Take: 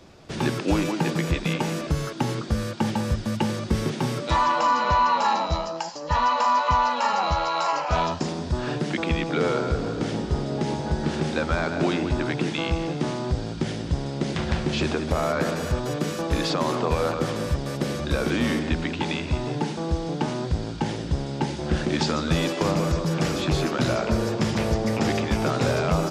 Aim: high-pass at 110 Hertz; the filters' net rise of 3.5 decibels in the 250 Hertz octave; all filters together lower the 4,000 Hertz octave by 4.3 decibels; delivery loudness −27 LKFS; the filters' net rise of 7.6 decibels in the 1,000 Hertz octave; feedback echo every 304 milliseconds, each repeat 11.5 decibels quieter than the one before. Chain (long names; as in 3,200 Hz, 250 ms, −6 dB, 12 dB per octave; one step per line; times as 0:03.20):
high-pass filter 110 Hz
parametric band 250 Hz +4.5 dB
parametric band 1,000 Hz +8.5 dB
parametric band 4,000 Hz −6 dB
repeating echo 304 ms, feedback 27%, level −11.5 dB
level −6.5 dB